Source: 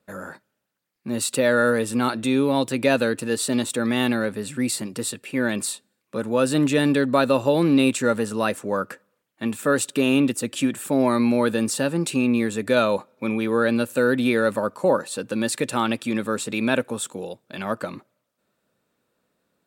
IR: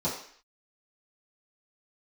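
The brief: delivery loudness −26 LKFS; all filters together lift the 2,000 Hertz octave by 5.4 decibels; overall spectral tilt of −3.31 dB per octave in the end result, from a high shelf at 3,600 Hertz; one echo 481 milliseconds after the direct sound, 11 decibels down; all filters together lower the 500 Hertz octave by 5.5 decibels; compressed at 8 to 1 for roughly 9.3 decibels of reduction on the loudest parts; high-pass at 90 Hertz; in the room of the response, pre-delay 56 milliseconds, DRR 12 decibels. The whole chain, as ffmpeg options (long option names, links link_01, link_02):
-filter_complex "[0:a]highpass=90,equalizer=frequency=500:width_type=o:gain=-7,equalizer=frequency=2000:width_type=o:gain=7,highshelf=frequency=3600:gain=3.5,acompressor=threshold=-24dB:ratio=8,aecho=1:1:481:0.282,asplit=2[link_01][link_02];[1:a]atrim=start_sample=2205,adelay=56[link_03];[link_02][link_03]afir=irnorm=-1:irlink=0,volume=-20.5dB[link_04];[link_01][link_04]amix=inputs=2:normalize=0,volume=2dB"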